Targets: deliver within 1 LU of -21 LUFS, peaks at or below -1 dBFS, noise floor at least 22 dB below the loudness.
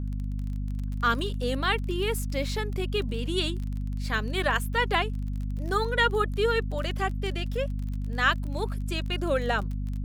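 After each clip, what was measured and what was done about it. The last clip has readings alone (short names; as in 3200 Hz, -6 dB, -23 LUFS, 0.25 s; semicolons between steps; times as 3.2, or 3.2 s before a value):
ticks 28/s; hum 50 Hz; harmonics up to 250 Hz; hum level -28 dBFS; loudness -28.5 LUFS; peak -10.0 dBFS; loudness target -21.0 LUFS
-> de-click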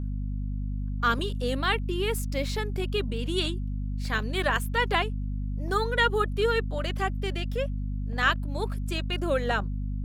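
ticks 1.7/s; hum 50 Hz; harmonics up to 250 Hz; hum level -28 dBFS
-> notches 50/100/150/200/250 Hz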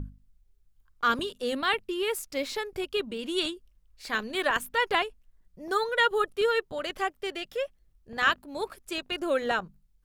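hum none; loudness -29.0 LUFS; peak -11.0 dBFS; loudness target -21.0 LUFS
-> gain +8 dB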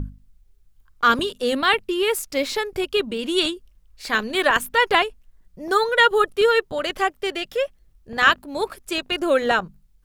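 loudness -21.0 LUFS; peak -3.0 dBFS; noise floor -58 dBFS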